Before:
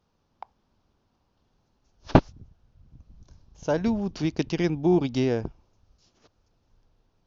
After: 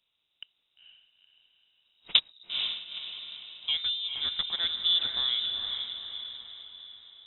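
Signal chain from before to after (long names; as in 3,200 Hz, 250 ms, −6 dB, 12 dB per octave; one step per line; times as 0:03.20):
low-shelf EQ 140 Hz −7.5 dB
feedback delay with all-pass diffusion 470 ms, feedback 48%, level −5 dB
voice inversion scrambler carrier 3,800 Hz
level −4.5 dB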